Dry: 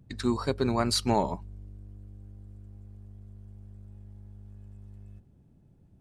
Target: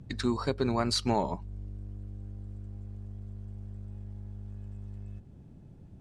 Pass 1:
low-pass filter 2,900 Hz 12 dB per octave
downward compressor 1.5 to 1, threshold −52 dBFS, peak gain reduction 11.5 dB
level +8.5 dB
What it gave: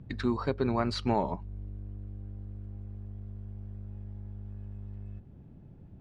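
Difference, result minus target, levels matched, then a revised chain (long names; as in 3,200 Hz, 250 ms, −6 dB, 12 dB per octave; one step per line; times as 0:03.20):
8,000 Hz band −12.5 dB
low-pass filter 7,900 Hz 12 dB per octave
downward compressor 1.5 to 1, threshold −52 dBFS, peak gain reduction 11.5 dB
level +8.5 dB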